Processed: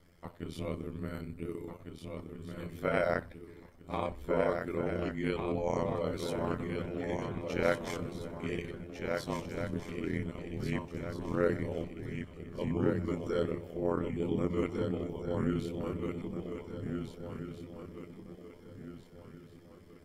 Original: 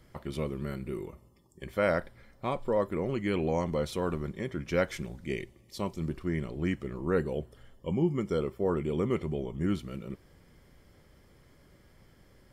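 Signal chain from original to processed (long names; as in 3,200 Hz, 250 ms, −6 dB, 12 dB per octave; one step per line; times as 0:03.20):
ring modulation 44 Hz
feedback echo with a long and a short gap by turns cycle 1,209 ms, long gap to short 3 to 1, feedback 32%, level −5.5 dB
time stretch by overlap-add 1.6×, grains 62 ms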